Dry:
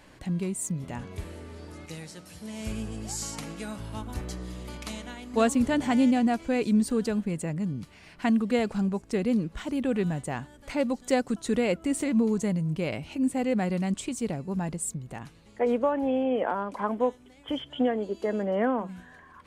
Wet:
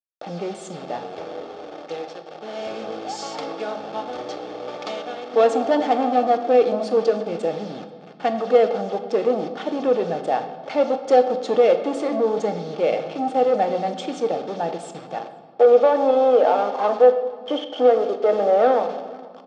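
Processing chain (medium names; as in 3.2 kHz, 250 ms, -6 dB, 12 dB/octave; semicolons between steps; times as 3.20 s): send-on-delta sampling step -39.5 dBFS; waveshaping leveller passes 3; cabinet simulation 480–4700 Hz, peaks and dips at 480 Hz +8 dB, 770 Hz +8 dB, 1.6 kHz -7 dB, 2.4 kHz -8 dB, 4.2 kHz -4 dB; comb of notches 990 Hz; echo from a far wall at 83 m, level -24 dB; on a send at -7 dB: reverberation RT60 1.7 s, pre-delay 3 ms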